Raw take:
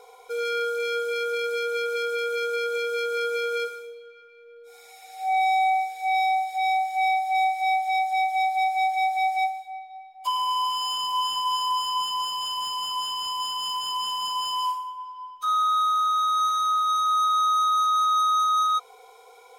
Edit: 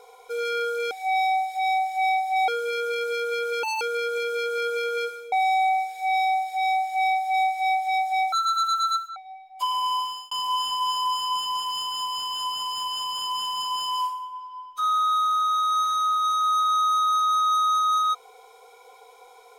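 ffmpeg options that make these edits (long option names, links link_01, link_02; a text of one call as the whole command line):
ffmpeg -i in.wav -filter_complex "[0:a]asplit=11[link_01][link_02][link_03][link_04][link_05][link_06][link_07][link_08][link_09][link_10][link_11];[link_01]atrim=end=0.912[link_12];[link_02]atrim=start=5.898:end=7.472[link_13];[link_03]atrim=start=0.908:end=2.064[link_14];[link_04]atrim=start=2.06:end=2.4,asetpts=PTS-STARTPTS,asetrate=82467,aresample=44100,atrim=end_sample=8018,asetpts=PTS-STARTPTS[link_15];[link_05]atrim=start=2.396:end=3.912[link_16];[link_06]atrim=start=5.328:end=8.334[link_17];[link_07]atrim=start=8.33:end=9.81,asetpts=PTS-STARTPTS,asetrate=77616,aresample=44100,atrim=end_sample=37084,asetpts=PTS-STARTPTS[link_18];[link_08]atrim=start=9.806:end=10.96,asetpts=PTS-STARTPTS,afade=type=out:start_time=0.794:duration=0.36[link_19];[link_09]atrim=start=10.96:end=12.272,asetpts=PTS-STARTPTS,afade=type=in:duration=0.004:curve=hsin[link_20];[link_10]atrim=start=12.268:end=13.832,asetpts=PTS-STARTPTS,areverse[link_21];[link_11]atrim=start=13.828[link_22];[link_12][link_13]acrossfade=duration=0.004:curve1=hsin:curve2=hsin[link_23];[link_23][link_14]acrossfade=duration=0.004:curve1=hsin:curve2=hsin[link_24];[link_24][link_15]acrossfade=duration=0.004:curve1=hsin:curve2=hsin[link_25];[link_25][link_16]acrossfade=duration=0.004:curve1=hsin:curve2=hsin[link_26];[link_26][link_17]acrossfade=duration=0.004:curve1=hsin:curve2=hsin[link_27];[link_27][link_18]acrossfade=duration=0.004:curve1=hsin:curve2=hsin[link_28];[link_19][link_20]concat=n=2:v=0:a=1[link_29];[link_28][link_29]acrossfade=duration=0.004:curve1=hsin:curve2=hsin[link_30];[link_30][link_21]acrossfade=duration=0.004:curve1=hsin:curve2=hsin[link_31];[link_31][link_22]acrossfade=duration=0.004:curve1=hsin:curve2=hsin" out.wav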